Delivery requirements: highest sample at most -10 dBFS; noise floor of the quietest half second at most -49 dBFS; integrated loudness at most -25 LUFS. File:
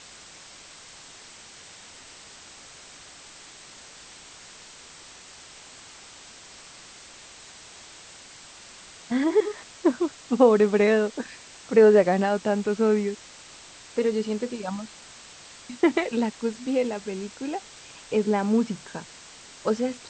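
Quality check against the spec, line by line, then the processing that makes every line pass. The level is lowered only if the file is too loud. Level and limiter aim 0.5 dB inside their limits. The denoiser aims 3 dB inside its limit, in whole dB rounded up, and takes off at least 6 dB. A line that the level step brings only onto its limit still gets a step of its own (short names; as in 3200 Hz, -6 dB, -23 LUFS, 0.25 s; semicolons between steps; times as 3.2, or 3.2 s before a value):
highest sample -5.5 dBFS: fail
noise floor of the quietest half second -47 dBFS: fail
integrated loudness -24.0 LUFS: fail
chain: denoiser 6 dB, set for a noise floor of -47 dBFS; gain -1.5 dB; limiter -10.5 dBFS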